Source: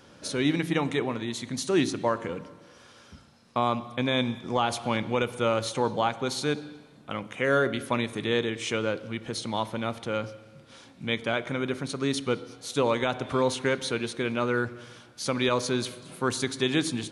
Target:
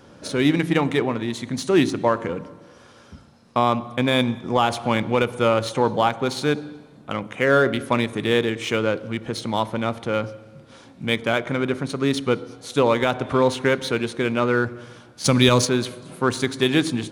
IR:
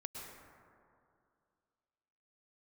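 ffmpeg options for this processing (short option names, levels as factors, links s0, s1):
-filter_complex "[0:a]asplit=3[s0][s1][s2];[s0]afade=t=out:st=15.24:d=0.02[s3];[s1]bass=f=250:g=10,treble=f=4000:g=14,afade=t=in:st=15.24:d=0.02,afade=t=out:st=15.64:d=0.02[s4];[s2]afade=t=in:st=15.64:d=0.02[s5];[s3][s4][s5]amix=inputs=3:normalize=0,asplit=2[s6][s7];[s7]adynamicsmooth=sensitivity=6:basefreq=1700,volume=0.891[s8];[s6][s8]amix=inputs=2:normalize=0,volume=1.12"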